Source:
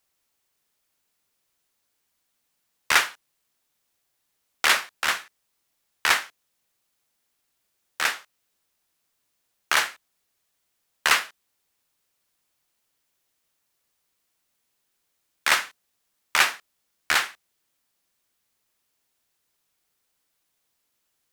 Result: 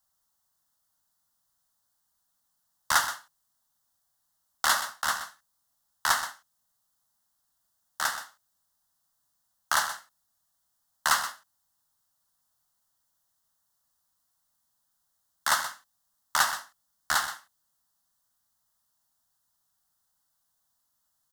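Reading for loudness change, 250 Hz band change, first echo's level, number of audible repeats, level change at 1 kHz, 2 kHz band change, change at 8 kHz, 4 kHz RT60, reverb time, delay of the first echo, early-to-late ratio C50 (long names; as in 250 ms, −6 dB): −5.0 dB, −6.5 dB, −18.0 dB, 2, −0.5 dB, −6.5 dB, −1.0 dB, no reverb audible, no reverb audible, 82 ms, no reverb audible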